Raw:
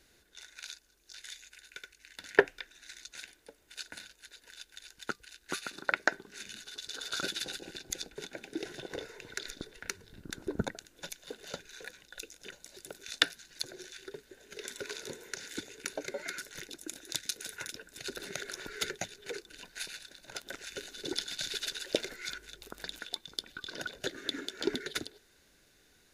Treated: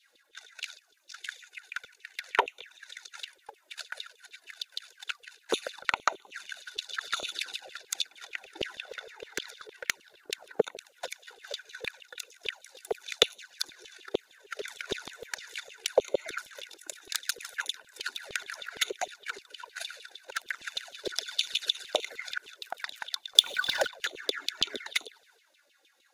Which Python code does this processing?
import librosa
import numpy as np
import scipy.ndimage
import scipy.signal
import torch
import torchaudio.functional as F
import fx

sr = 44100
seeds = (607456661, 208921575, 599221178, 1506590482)

y = fx.filter_lfo_highpass(x, sr, shape='saw_down', hz=6.5, low_hz=400.0, high_hz=3600.0, q=6.8)
y = fx.transient(y, sr, attack_db=10, sustain_db=6)
y = fx.env_flanger(y, sr, rest_ms=3.8, full_db=-21.0)
y = fx.power_curve(y, sr, exponent=0.7, at=(23.35, 23.87))
y = F.gain(torch.from_numpy(y), -4.0).numpy()